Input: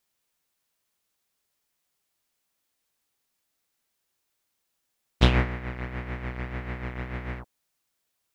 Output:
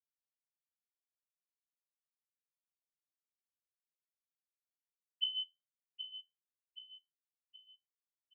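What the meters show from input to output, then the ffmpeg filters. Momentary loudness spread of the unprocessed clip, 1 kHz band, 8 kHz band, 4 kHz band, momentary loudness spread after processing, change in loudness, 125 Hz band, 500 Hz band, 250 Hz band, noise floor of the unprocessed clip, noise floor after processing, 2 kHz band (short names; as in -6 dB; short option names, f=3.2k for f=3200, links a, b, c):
13 LU, under -40 dB, n/a, -2.0 dB, 24 LU, -11.0 dB, under -40 dB, under -40 dB, under -40 dB, -79 dBFS, under -85 dBFS, under -40 dB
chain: -af "equalizer=f=67:t=o:w=1:g=3.5,afftfilt=real='re*gte(hypot(re,im),0.794)':imag='im*gte(hypot(re,im),0.794)':win_size=1024:overlap=0.75,acompressor=threshold=-36dB:ratio=6,flanger=delay=7.3:depth=4.9:regen=66:speed=0.26:shape=sinusoidal,aecho=1:1:774|1548|2322|3096|3870:0.316|0.139|0.0612|0.0269|0.0119,lowpass=f=2.6k:t=q:w=0.5098,lowpass=f=2.6k:t=q:w=0.6013,lowpass=f=2.6k:t=q:w=0.9,lowpass=f=2.6k:t=q:w=2.563,afreqshift=-3100,volume=5.5dB"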